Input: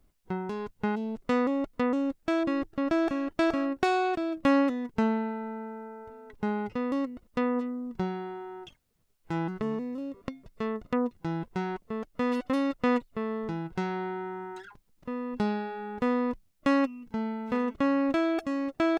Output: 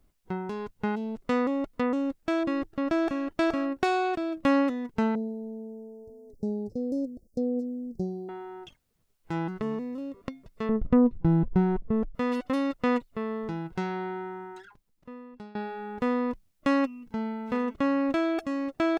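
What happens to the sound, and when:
0:05.15–0:08.29: inverse Chebyshev band-stop filter 1,000–3,200 Hz
0:10.69–0:12.15: spectral tilt −4.5 dB per octave
0:14.17–0:15.55: fade out, to −22 dB

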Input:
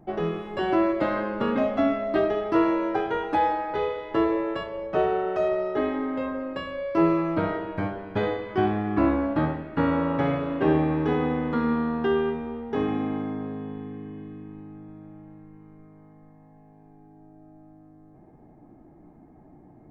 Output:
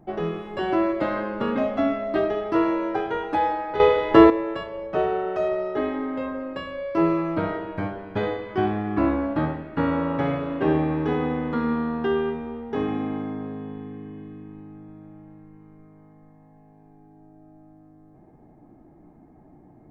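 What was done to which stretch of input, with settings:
0:03.80–0:04.30: clip gain +11 dB

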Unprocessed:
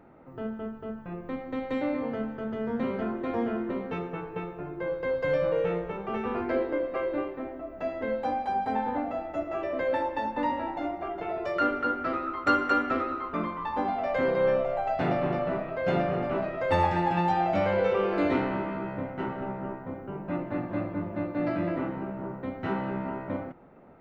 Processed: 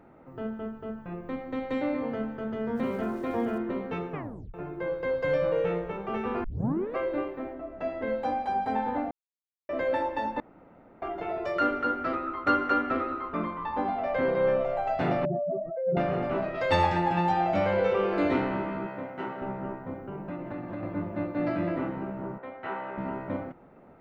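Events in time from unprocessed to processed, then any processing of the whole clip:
0:02.75–0:03.58: centre clipping without the shift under −50 dBFS
0:04.12: tape stop 0.42 s
0:06.44: tape start 0.52 s
0:07.53–0:08.07: high-frequency loss of the air 79 metres
0:09.11–0:09.69: silence
0:10.40–0:11.02: fill with room tone
0:12.15–0:14.61: high-frequency loss of the air 130 metres
0:15.25–0:15.97: expanding power law on the bin magnitudes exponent 3.4
0:16.54–0:16.97: parametric band 4,600 Hz +12.5 dB → +3.5 dB 1.8 octaves
0:18.87–0:19.42: high-pass filter 340 Hz 6 dB per octave
0:19.95–0:20.83: downward compressor, threshold −32 dBFS
0:22.38–0:22.98: three-way crossover with the lows and the highs turned down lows −18 dB, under 440 Hz, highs −18 dB, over 3,300 Hz

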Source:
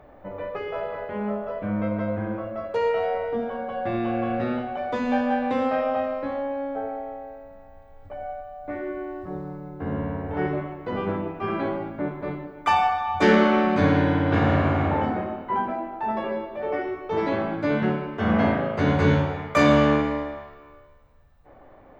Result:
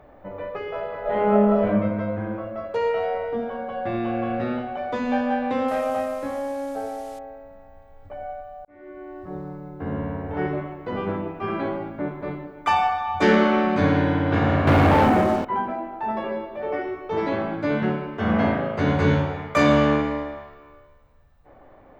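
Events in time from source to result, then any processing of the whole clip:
0:01.01–0:01.67: thrown reverb, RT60 1 s, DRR −8.5 dB
0:05.68–0:07.19: linear delta modulator 64 kbit/s, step −41.5 dBFS
0:08.65–0:09.40: fade in
0:14.67–0:15.45: leveller curve on the samples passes 3

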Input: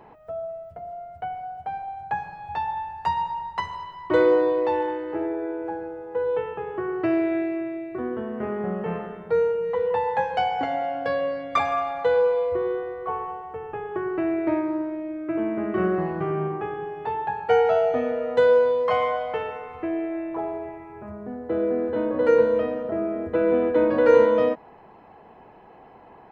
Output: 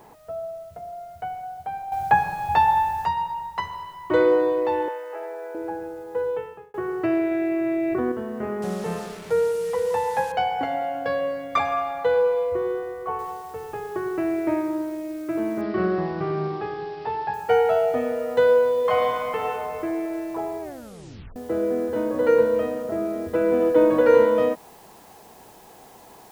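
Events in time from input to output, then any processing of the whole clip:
0:01.92–0:03.05: clip gain +10 dB
0:04.88–0:05.55: elliptic band-pass filter 510–3,200 Hz
0:06.21–0:06.74: fade out linear
0:07.31–0:08.12: envelope flattener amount 100%
0:08.62–0:10.32: linear delta modulator 64 kbit/s, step −34.5 dBFS
0:13.19: noise floor change −63 dB −54 dB
0:15.61–0:17.34: bad sample-rate conversion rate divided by 4×, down none, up filtered
0:18.72–0:19.49: thrown reverb, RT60 2.4 s, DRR 0.5 dB
0:20.61: tape stop 0.75 s
0:23.60–0:24.01: comb filter 6.3 ms, depth 54%

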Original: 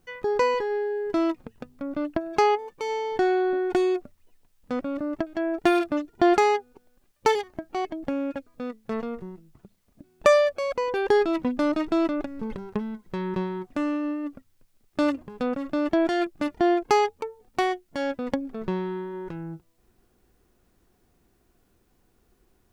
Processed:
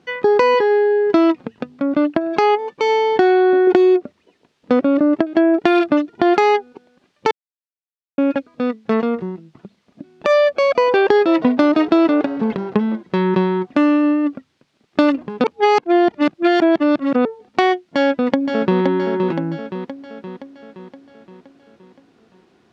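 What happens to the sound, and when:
0:03.67–0:05.64: parametric band 400 Hz +6 dB 1 octave
0:07.31–0:08.18: silence
0:10.59–0:13.03: echo with shifted repeats 159 ms, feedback 56%, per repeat +120 Hz, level −21.5 dB
0:15.44–0:17.25: reverse
0:17.87–0:18.80: delay throw 520 ms, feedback 55%, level −7 dB
whole clip: Chebyshev band-pass filter 190–3,900 Hz, order 2; downward compressor 10 to 1, threshold −23 dBFS; boost into a limiter +14.5 dB; level −1 dB

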